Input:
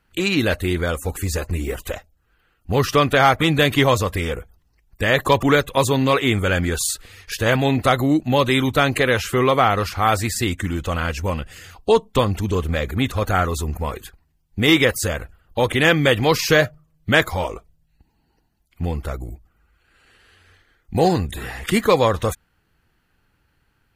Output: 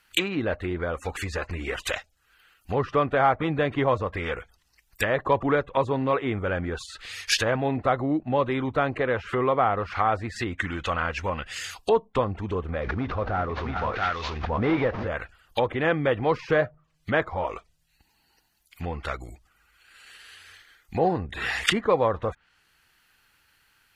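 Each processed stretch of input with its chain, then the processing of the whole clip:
12.81–15.08 CVSD 32 kbps + tapped delay 0.397/0.68 s -16/-6.5 dB + backwards sustainer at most 29 dB/s
whole clip: treble ducked by the level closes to 720 Hz, closed at -17 dBFS; tilt shelf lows -10 dB, about 850 Hz

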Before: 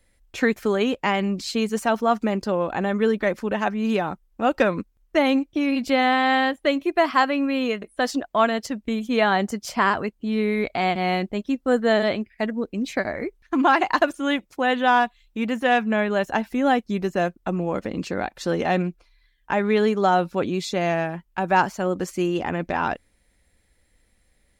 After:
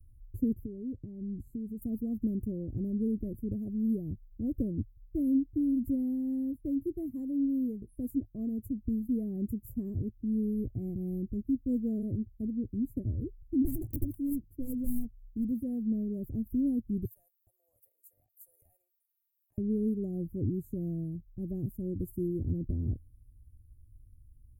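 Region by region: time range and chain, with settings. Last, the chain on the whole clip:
0.53–1.82 compressor 3:1, threshold -28 dBFS + LPF 2700 Hz 6 dB/oct
13.62–15.51 self-modulated delay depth 0.61 ms + notches 50/100/150 Hz
17.05–19.58 steep high-pass 730 Hz 48 dB/oct + compressor 3:1, threshold -31 dBFS + high shelf 7200 Hz +10.5 dB
whole clip: inverse Chebyshev band-stop 840–5400 Hz, stop band 60 dB; resonant low shelf 140 Hz +8.5 dB, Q 3

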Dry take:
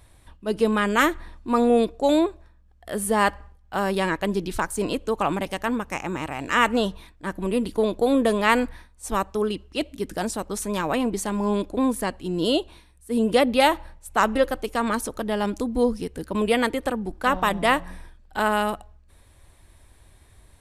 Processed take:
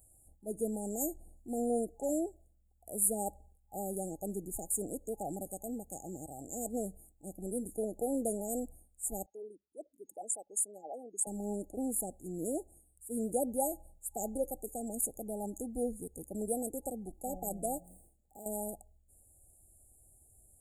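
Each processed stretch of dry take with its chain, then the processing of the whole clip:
9.26–11.27 formant sharpening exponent 2 + HPF 620 Hz
17.78–18.46 median filter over 3 samples + HPF 92 Hz 6 dB/oct + compressor 2:1, threshold -36 dBFS
whole clip: pre-emphasis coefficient 0.8; FFT band-reject 830–6600 Hz

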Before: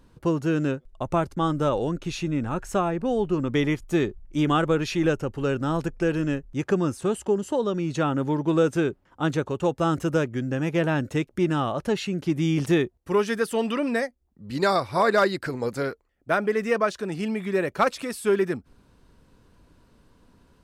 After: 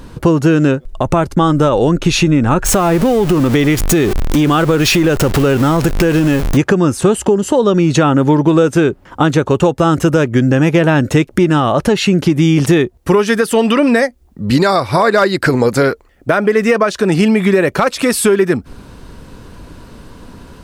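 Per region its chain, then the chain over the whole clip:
2.65–6.57 zero-crossing step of -32.5 dBFS + high shelf 9400 Hz +4.5 dB + compressor 3:1, threshold -31 dBFS
whole clip: compressor, threshold -30 dBFS; maximiser +23 dB; gain -1 dB

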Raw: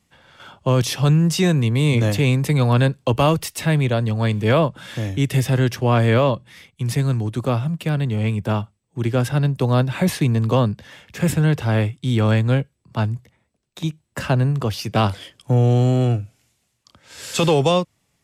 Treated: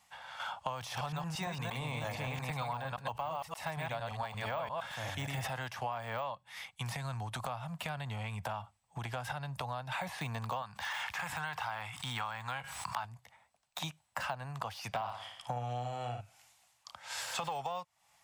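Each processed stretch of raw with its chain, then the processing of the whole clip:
0.78–5.5 reverse delay 0.115 s, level -3 dB + sustainer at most 88 dB/s
6.95–9.92 low shelf 130 Hz +9.5 dB + compressor, threshold -22 dBFS
10.62–13.05 resonant low shelf 730 Hz -8 dB, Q 1.5 + fast leveller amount 70%
14.88–16.21 high shelf 7200 Hz -8 dB + flutter echo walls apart 9.8 m, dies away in 0.43 s
whole clip: de-esser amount 85%; resonant low shelf 540 Hz -13.5 dB, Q 3; compressor 10:1, threshold -36 dBFS; gain +1 dB

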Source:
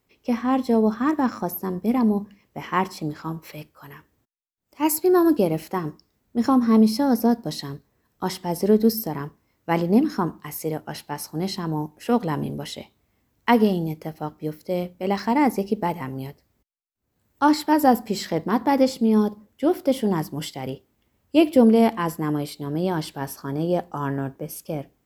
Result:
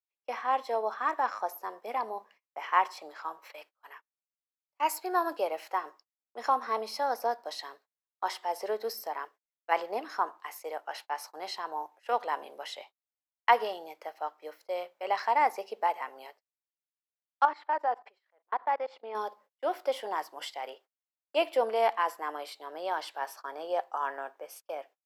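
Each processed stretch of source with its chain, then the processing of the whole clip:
9.25–9.72 HPF 210 Hz + bell 930 Hz -8 dB 0.9 oct
17.45–19.15 LPF 2500 Hz + low shelf 220 Hz -10.5 dB + level quantiser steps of 23 dB
whole clip: LPF 2200 Hz 6 dB/oct; gate -43 dBFS, range -32 dB; HPF 630 Hz 24 dB/oct

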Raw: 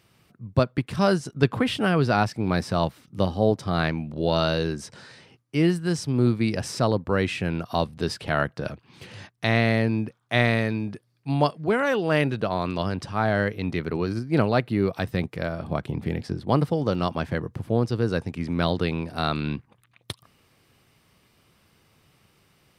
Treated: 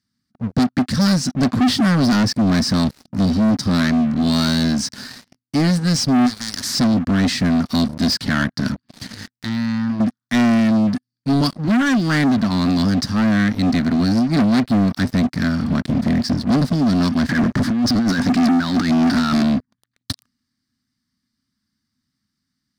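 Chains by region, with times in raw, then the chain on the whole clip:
6.26–6.75 hard clip -19.5 dBFS + spectral compressor 4:1
9.08–10 compressor 10:1, threshold -24 dBFS + transient shaper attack -8 dB, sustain -2 dB + core saturation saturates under 1200 Hz
17.29–19.43 negative-ratio compressor -29 dBFS, ratio -0.5 + overdrive pedal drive 24 dB, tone 1600 Hz, clips at -14 dBFS
whole clip: EQ curve 160 Hz 0 dB, 250 Hz +14 dB, 440 Hz -23 dB, 1800 Hz +4 dB, 2600 Hz -11 dB, 4600 Hz +13 dB, 9900 Hz +6 dB; sample leveller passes 5; high shelf 7400 Hz -10 dB; gain -7.5 dB

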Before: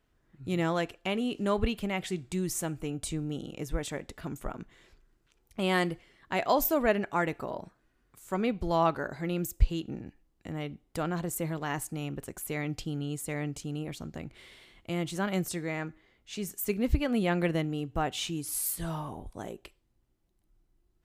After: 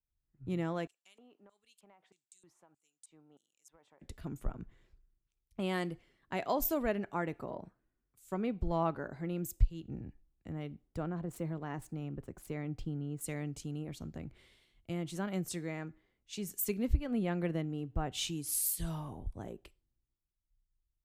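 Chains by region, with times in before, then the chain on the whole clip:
0.87–4.01 LFO band-pass square 1.6 Hz 950–7800 Hz + compressor 16:1, threshold -45 dBFS
10.87–13.21 median filter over 3 samples + high shelf 2300 Hz -7 dB
whole clip: low shelf 450 Hz +6.5 dB; compressor 2:1, threshold -32 dBFS; three-band expander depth 70%; gain -5 dB

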